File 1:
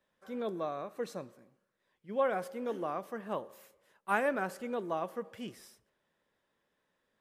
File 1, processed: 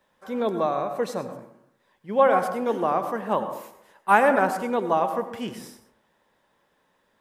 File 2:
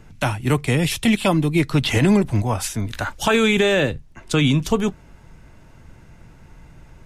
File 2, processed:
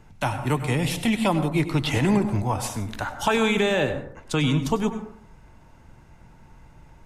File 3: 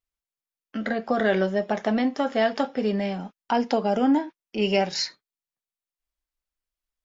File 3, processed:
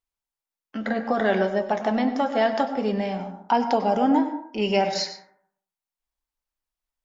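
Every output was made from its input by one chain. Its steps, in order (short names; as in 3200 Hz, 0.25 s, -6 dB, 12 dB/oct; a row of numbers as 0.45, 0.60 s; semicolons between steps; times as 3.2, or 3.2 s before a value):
bell 890 Hz +6.5 dB 0.52 oct; plate-style reverb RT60 0.65 s, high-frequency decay 0.35×, pre-delay 85 ms, DRR 9 dB; match loudness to -24 LUFS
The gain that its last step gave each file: +10.0, -5.5, -1.0 dB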